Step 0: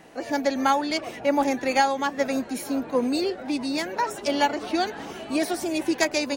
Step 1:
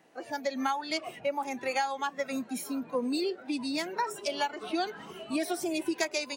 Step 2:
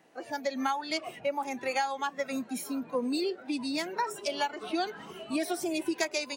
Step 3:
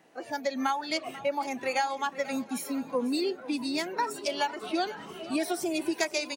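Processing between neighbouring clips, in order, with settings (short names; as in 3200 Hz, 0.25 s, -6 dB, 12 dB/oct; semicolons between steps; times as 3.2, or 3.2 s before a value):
compressor 4:1, threshold -23 dBFS, peak gain reduction 7.5 dB; Bessel high-pass 150 Hz, order 2; spectral noise reduction 10 dB; gain -2.5 dB
nothing audible
feedback echo 0.491 s, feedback 46%, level -17 dB; gain +1.5 dB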